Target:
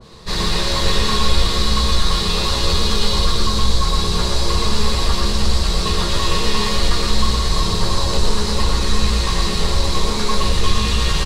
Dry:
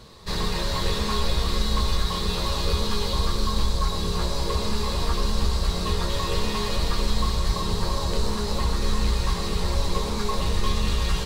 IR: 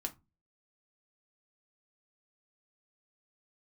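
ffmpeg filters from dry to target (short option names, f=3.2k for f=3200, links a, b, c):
-filter_complex "[0:a]lowpass=11k,acontrast=80,aecho=1:1:118:0.668,asplit=2[a][b];[1:a]atrim=start_sample=2205[c];[b][c]afir=irnorm=-1:irlink=0,volume=-5dB[d];[a][d]amix=inputs=2:normalize=0,adynamicequalizer=threshold=0.0224:dfrequency=1600:dqfactor=0.7:tfrequency=1600:tqfactor=0.7:attack=5:release=100:ratio=0.375:range=2:mode=boostabove:tftype=highshelf,volume=-5.5dB"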